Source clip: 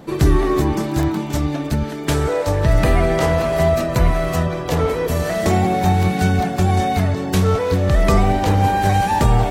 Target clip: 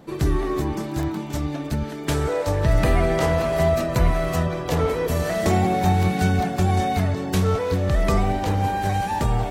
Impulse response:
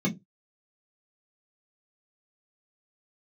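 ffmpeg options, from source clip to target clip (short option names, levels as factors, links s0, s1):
-af "dynaudnorm=f=210:g=17:m=3.76,volume=0.447"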